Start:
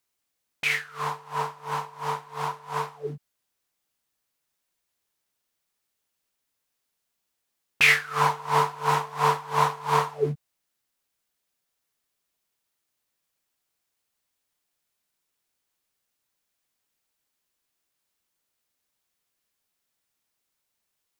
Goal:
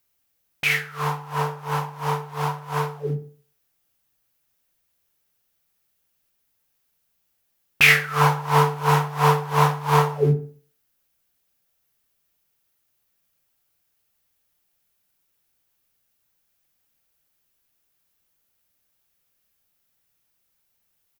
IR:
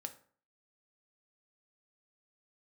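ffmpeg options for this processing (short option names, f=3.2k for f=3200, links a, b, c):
-filter_complex "[0:a]equalizer=f=250:t=o:w=1:g=-6,equalizer=f=500:t=o:w=1:g=-5,equalizer=f=1k:t=o:w=1:g=-7,equalizer=f=2k:t=o:w=1:g=-5,equalizer=f=4k:t=o:w=1:g=-6,equalizer=f=8k:t=o:w=1:g=-8,asplit=2[a][b];[b]adelay=61,lowpass=f=2k:p=1,volume=-13.5dB,asplit=2[c][d];[d]adelay=61,lowpass=f=2k:p=1,volume=0.44,asplit=2[e][f];[f]adelay=61,lowpass=f=2k:p=1,volume=0.44,asplit=2[g][h];[h]adelay=61,lowpass=f=2k:p=1,volume=0.44[i];[a][c][e][g][i]amix=inputs=5:normalize=0,asplit=2[j][k];[1:a]atrim=start_sample=2205[l];[k][l]afir=irnorm=-1:irlink=0,volume=6.5dB[m];[j][m]amix=inputs=2:normalize=0,volume=4dB"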